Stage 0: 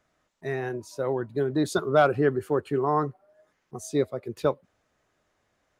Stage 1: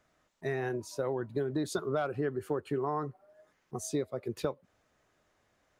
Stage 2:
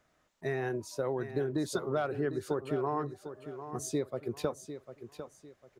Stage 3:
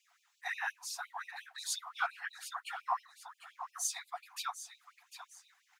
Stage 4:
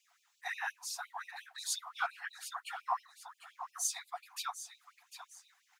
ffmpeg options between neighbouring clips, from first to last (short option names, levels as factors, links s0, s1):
-af "acompressor=threshold=0.0355:ratio=6"
-af "aecho=1:1:750|1500|2250:0.282|0.0874|0.0271"
-af "afftfilt=real='hypot(re,im)*cos(2*PI*random(0))':imag='hypot(re,im)*sin(2*PI*random(1))':win_size=512:overlap=0.75,afftfilt=real='re*gte(b*sr/1024,680*pow(2400/680,0.5+0.5*sin(2*PI*5.7*pts/sr)))':imag='im*gte(b*sr/1024,680*pow(2400/680,0.5+0.5*sin(2*PI*5.7*pts/sr)))':win_size=1024:overlap=0.75,volume=3.76"
-af "equalizer=f=1800:t=o:w=2.2:g=-3,volume=1.19"